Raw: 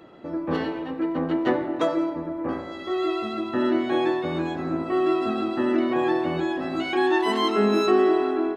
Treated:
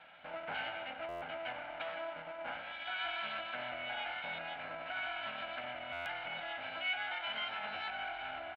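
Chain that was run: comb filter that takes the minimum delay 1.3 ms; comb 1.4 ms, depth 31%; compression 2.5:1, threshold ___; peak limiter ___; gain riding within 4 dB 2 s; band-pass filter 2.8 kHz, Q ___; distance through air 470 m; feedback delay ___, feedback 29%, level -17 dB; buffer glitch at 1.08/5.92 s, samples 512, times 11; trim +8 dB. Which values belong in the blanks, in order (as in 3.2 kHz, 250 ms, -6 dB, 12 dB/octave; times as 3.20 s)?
-28 dBFS, -22 dBFS, 2.2, 88 ms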